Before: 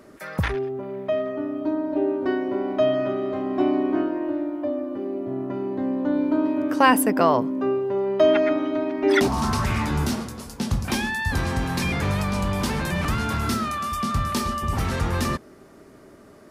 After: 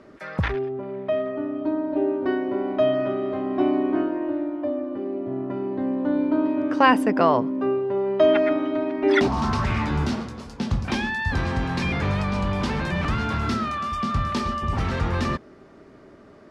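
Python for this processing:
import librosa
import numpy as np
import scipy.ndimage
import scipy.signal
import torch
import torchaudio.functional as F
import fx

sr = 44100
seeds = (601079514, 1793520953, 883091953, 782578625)

y = scipy.signal.sosfilt(scipy.signal.butter(2, 4300.0, 'lowpass', fs=sr, output='sos'), x)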